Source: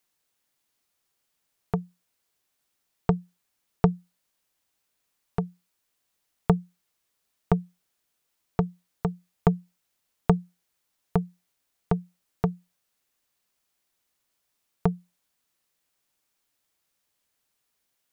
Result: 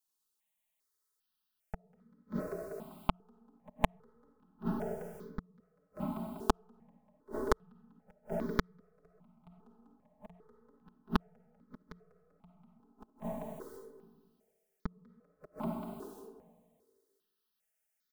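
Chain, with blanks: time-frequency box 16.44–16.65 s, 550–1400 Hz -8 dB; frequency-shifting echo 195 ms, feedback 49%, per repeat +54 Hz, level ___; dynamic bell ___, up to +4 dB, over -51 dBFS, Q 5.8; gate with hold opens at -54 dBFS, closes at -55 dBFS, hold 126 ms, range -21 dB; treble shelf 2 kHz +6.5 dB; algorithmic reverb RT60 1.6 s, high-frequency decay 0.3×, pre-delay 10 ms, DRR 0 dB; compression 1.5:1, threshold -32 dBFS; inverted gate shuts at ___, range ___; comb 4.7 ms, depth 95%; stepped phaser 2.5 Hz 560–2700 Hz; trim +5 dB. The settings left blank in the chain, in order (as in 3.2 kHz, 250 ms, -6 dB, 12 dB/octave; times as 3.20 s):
-5 dB, 620 Hz, -26 dBFS, -39 dB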